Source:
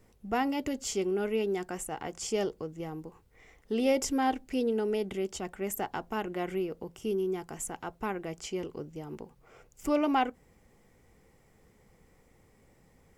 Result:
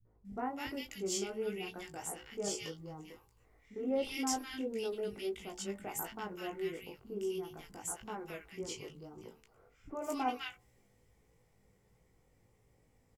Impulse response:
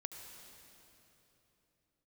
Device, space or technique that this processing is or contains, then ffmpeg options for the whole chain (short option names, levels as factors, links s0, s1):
double-tracked vocal: -filter_complex "[0:a]equalizer=f=120:w=1.4:g=5.5,asplit=2[s0][s1];[s1]adelay=16,volume=0.266[s2];[s0][s2]amix=inputs=2:normalize=0,bandreject=f=73.96:t=h:w=4,bandreject=f=147.92:t=h:w=4,bandreject=f=221.88:t=h:w=4,bandreject=f=295.84:t=h:w=4,bandreject=f=369.8:t=h:w=4,bandreject=f=443.76:t=h:w=4,bandreject=f=517.72:t=h:w=4,bandreject=f=591.68:t=h:w=4,bandreject=f=665.64:t=h:w=4,bandreject=f=739.6:t=h:w=4,bandreject=f=813.56:t=h:w=4,bandreject=f=887.52:t=h:w=4,bandreject=f=961.48:t=h:w=4,bandreject=f=1035.44:t=h:w=4,bandreject=f=1109.4:t=h:w=4,bandreject=f=1183.36:t=h:w=4,flanger=delay=18:depth=2.4:speed=1.5,acrossover=split=200|1500[s3][s4][s5];[s4]adelay=50[s6];[s5]adelay=250[s7];[s3][s6][s7]amix=inputs=3:normalize=0,adynamicequalizer=threshold=0.00251:dfrequency=1600:dqfactor=0.7:tfrequency=1600:tqfactor=0.7:attack=5:release=100:ratio=0.375:range=3:mode=boostabove:tftype=highshelf,volume=0.562"